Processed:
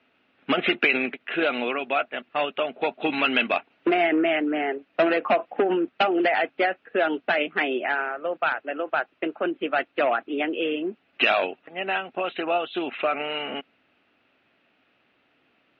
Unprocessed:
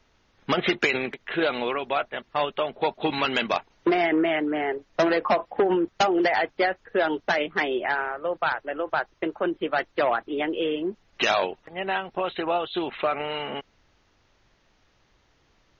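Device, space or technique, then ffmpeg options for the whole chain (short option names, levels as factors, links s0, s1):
kitchen radio: -af "highpass=200,equalizer=f=260:t=q:w=4:g=8,equalizer=f=680:t=q:w=4:g=4,equalizer=f=970:t=q:w=4:g=-5,equalizer=f=1400:t=q:w=4:g=4,equalizer=f=2600:t=q:w=4:g=9,lowpass=f=3500:w=0.5412,lowpass=f=3500:w=1.3066,volume=0.841"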